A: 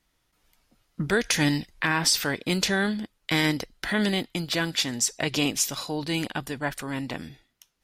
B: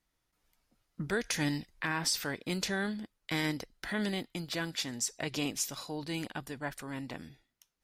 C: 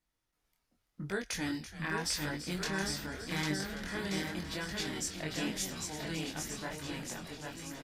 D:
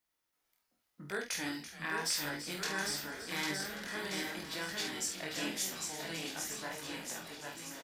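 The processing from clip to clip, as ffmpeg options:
ffmpeg -i in.wav -af "equalizer=frequency=3100:width_type=o:width=0.77:gain=-2.5,volume=-8.5dB" out.wav
ffmpeg -i in.wav -filter_complex "[0:a]asplit=2[link_01][link_02];[link_02]aecho=0:1:800|1480|2058|2549|2967:0.631|0.398|0.251|0.158|0.1[link_03];[link_01][link_03]amix=inputs=2:normalize=0,flanger=delay=20:depth=6.2:speed=0.86,asplit=2[link_04][link_05];[link_05]asplit=5[link_06][link_07][link_08][link_09][link_10];[link_06]adelay=335,afreqshift=-120,volume=-12dB[link_11];[link_07]adelay=670,afreqshift=-240,volume=-18.7dB[link_12];[link_08]adelay=1005,afreqshift=-360,volume=-25.5dB[link_13];[link_09]adelay=1340,afreqshift=-480,volume=-32.2dB[link_14];[link_10]adelay=1675,afreqshift=-600,volume=-39dB[link_15];[link_11][link_12][link_13][link_14][link_15]amix=inputs=5:normalize=0[link_16];[link_04][link_16]amix=inputs=2:normalize=0,volume=-1dB" out.wav
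ffmpeg -i in.wav -filter_complex "[0:a]lowpass=frequency=1900:poles=1,aemphasis=mode=production:type=riaa,asplit=2[link_01][link_02];[link_02]adelay=48,volume=-6dB[link_03];[link_01][link_03]amix=inputs=2:normalize=0" out.wav

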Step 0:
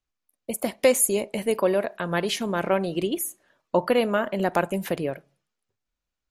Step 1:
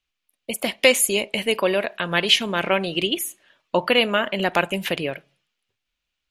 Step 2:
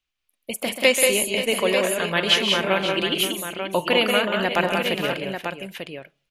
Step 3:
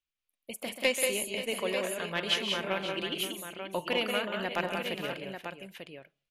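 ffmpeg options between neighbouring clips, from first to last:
ffmpeg -i in.wav -af "equalizer=frequency=2900:width_type=o:width=1.4:gain=14.5" out.wav
ffmpeg -i in.wav -af "aecho=1:1:134|183|220|531|892:0.316|0.596|0.266|0.237|0.422,volume=-2dB" out.wav
ffmpeg -i in.wav -af "aeval=exprs='0.75*(cos(1*acos(clip(val(0)/0.75,-1,1)))-cos(1*PI/2))+0.075*(cos(3*acos(clip(val(0)/0.75,-1,1)))-cos(3*PI/2))':channel_layout=same,volume=-8dB" out.wav

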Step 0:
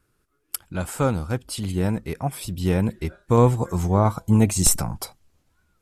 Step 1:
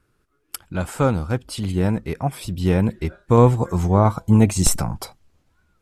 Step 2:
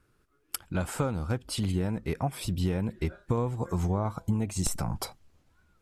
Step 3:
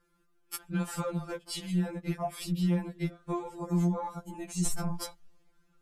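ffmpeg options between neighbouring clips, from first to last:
ffmpeg -i in.wav -af "highshelf=frequency=6600:gain=-8.5,volume=3dB" out.wav
ffmpeg -i in.wav -af "acompressor=threshold=-22dB:ratio=16,volume=-2dB" out.wav
ffmpeg -i in.wav -af "afftfilt=real='re*2.83*eq(mod(b,8),0)':imag='im*2.83*eq(mod(b,8),0)':win_size=2048:overlap=0.75" out.wav

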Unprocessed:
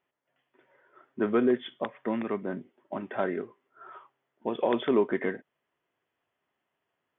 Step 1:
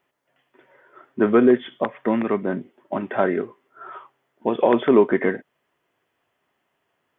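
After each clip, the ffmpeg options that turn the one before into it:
ffmpeg -i in.wav -filter_complex "[0:a]acrossover=split=2600[link_01][link_02];[link_02]acompressor=threshold=-53dB:ratio=4:attack=1:release=60[link_03];[link_01][link_03]amix=inputs=2:normalize=0,volume=9dB" out.wav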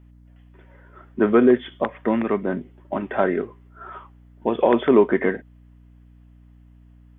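ffmpeg -i in.wav -af "aeval=exprs='val(0)+0.00398*(sin(2*PI*60*n/s)+sin(2*PI*2*60*n/s)/2+sin(2*PI*3*60*n/s)/3+sin(2*PI*4*60*n/s)/4+sin(2*PI*5*60*n/s)/5)':channel_layout=same" out.wav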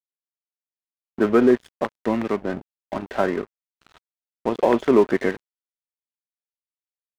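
ffmpeg -i in.wav -af "aeval=exprs='sgn(val(0))*max(abs(val(0))-0.0237,0)':channel_layout=same" out.wav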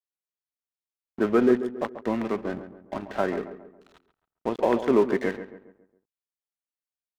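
ffmpeg -i in.wav -filter_complex "[0:a]asplit=2[link_01][link_02];[link_02]adelay=137,lowpass=frequency=1800:poles=1,volume=-11dB,asplit=2[link_03][link_04];[link_04]adelay=137,lowpass=frequency=1800:poles=1,volume=0.44,asplit=2[link_05][link_06];[link_06]adelay=137,lowpass=frequency=1800:poles=1,volume=0.44,asplit=2[link_07][link_08];[link_08]adelay=137,lowpass=frequency=1800:poles=1,volume=0.44,asplit=2[link_09][link_10];[link_10]adelay=137,lowpass=frequency=1800:poles=1,volume=0.44[link_11];[link_01][link_03][link_05][link_07][link_09][link_11]amix=inputs=6:normalize=0,volume=-4.5dB" out.wav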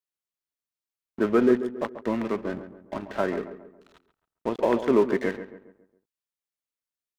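ffmpeg -i in.wav -af "bandreject=frequency=760:width=12" out.wav

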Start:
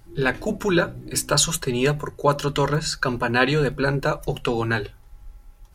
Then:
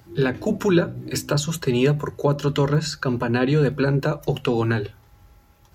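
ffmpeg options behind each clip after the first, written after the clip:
ffmpeg -i in.wav -filter_complex "[0:a]highpass=frequency=66:width=0.5412,highpass=frequency=66:width=1.3066,equalizer=frequency=9300:width=4.9:gain=-15,acrossover=split=450[link_01][link_02];[link_02]acompressor=threshold=-30dB:ratio=6[link_03];[link_01][link_03]amix=inputs=2:normalize=0,volume=4dB" out.wav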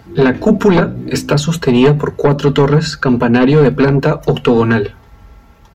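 ffmpeg -i in.wav -af "aeval=exprs='0.531*sin(PI/2*2.24*val(0)/0.531)':channel_layout=same,lowpass=frequency=2800:poles=1,aecho=1:1:4.4:0.42,volume=1dB" out.wav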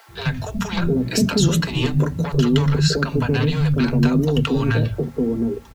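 ffmpeg -i in.wav -filter_complex "[0:a]acrossover=split=210|3000[link_01][link_02][link_03];[link_02]acompressor=threshold=-22dB:ratio=5[link_04];[link_01][link_04][link_03]amix=inputs=3:normalize=0,acrusher=bits=8:mix=0:aa=0.000001,acrossover=split=170|610[link_05][link_06][link_07];[link_05]adelay=80[link_08];[link_06]adelay=710[link_09];[link_08][link_09][link_07]amix=inputs=3:normalize=0" out.wav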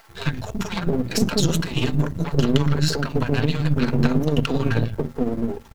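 ffmpeg -i in.wav -af "aeval=exprs='if(lt(val(0),0),0.251*val(0),val(0))':channel_layout=same,tremolo=f=18:d=0.46,volume=2.5dB" out.wav

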